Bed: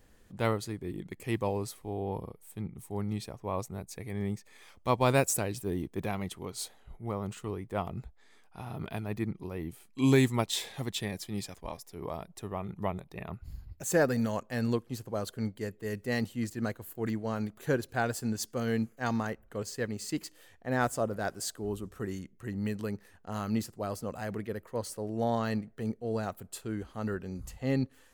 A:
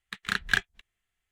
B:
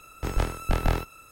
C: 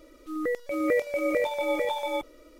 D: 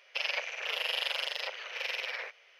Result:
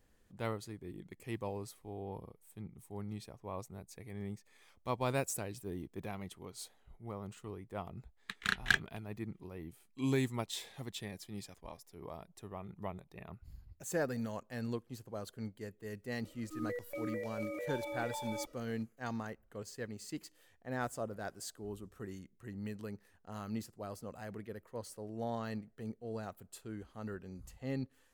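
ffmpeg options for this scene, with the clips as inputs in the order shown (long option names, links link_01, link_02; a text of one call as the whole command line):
ffmpeg -i bed.wav -i cue0.wav -i cue1.wav -i cue2.wav -filter_complex "[0:a]volume=-9dB[link_01];[3:a]alimiter=level_in=1.5dB:limit=-24dB:level=0:latency=1:release=44,volume=-1.5dB[link_02];[1:a]atrim=end=1.31,asetpts=PTS-STARTPTS,volume=-4.5dB,afade=type=in:duration=0.004:curve=hsin,afade=type=out:start_time=1.306:duration=0.004:curve=hsin,adelay=8170[link_03];[link_02]atrim=end=2.59,asetpts=PTS-STARTPTS,volume=-8.5dB,afade=type=in:duration=0.004:curve=hsin,afade=type=out:start_time=2.586:duration=0.004:curve=hsin,adelay=16240[link_04];[link_01][link_03][link_04]amix=inputs=3:normalize=0" out.wav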